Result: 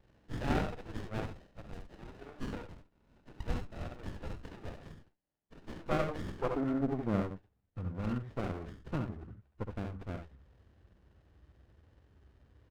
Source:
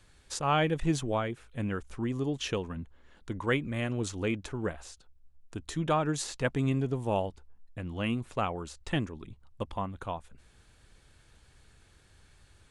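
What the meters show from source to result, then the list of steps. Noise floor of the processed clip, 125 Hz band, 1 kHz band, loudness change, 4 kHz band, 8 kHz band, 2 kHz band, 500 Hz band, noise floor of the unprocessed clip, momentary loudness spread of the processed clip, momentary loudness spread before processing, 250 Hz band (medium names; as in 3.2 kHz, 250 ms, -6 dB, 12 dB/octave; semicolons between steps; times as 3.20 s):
-76 dBFS, -6.0 dB, -8.5 dB, -6.0 dB, -13.0 dB, under -15 dB, -9.5 dB, -6.5 dB, -61 dBFS, 18 LU, 14 LU, -5.0 dB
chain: knee-point frequency compression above 1.1 kHz 4:1; high-pass sweep 950 Hz -> 60 Hz, 5.65–7.99 s; on a send: early reflections 66 ms -7 dB, 76 ms -10.5 dB; on the sum: sliding maximum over 33 samples; trim -5.5 dB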